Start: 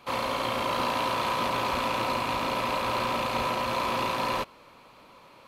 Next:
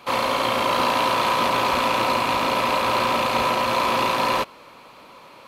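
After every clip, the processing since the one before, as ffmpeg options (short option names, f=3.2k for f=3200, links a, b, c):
-af "lowshelf=f=130:g=-8,volume=7.5dB"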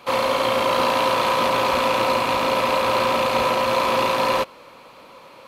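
-af "equalizer=f=520:w=7.2:g=6.5"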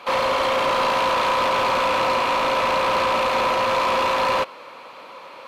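-filter_complex "[0:a]asplit=2[a][b];[b]highpass=f=720:p=1,volume=18dB,asoftclip=type=tanh:threshold=-7.5dB[c];[a][c]amix=inputs=2:normalize=0,lowpass=f=2.8k:p=1,volume=-6dB,volume=-5dB"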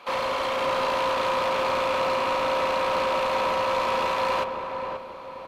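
-filter_complex "[0:a]asplit=2[a][b];[b]adelay=532,lowpass=f=1.1k:p=1,volume=-4dB,asplit=2[c][d];[d]adelay=532,lowpass=f=1.1k:p=1,volume=0.46,asplit=2[e][f];[f]adelay=532,lowpass=f=1.1k:p=1,volume=0.46,asplit=2[g][h];[h]adelay=532,lowpass=f=1.1k:p=1,volume=0.46,asplit=2[i][j];[j]adelay=532,lowpass=f=1.1k:p=1,volume=0.46,asplit=2[k][l];[l]adelay=532,lowpass=f=1.1k:p=1,volume=0.46[m];[a][c][e][g][i][k][m]amix=inputs=7:normalize=0,volume=-6dB"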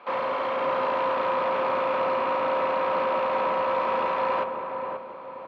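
-af "highpass=150,lowpass=2k"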